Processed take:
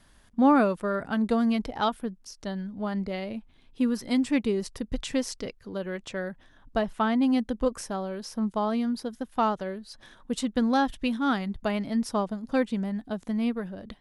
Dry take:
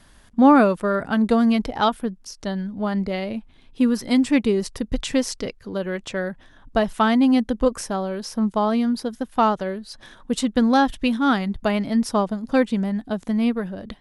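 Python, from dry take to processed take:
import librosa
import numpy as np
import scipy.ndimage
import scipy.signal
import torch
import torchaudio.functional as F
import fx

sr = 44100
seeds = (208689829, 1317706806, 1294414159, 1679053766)

y = fx.high_shelf(x, sr, hz=3900.0, db=-8.5, at=(6.81, 7.22))
y = F.gain(torch.from_numpy(y), -6.5).numpy()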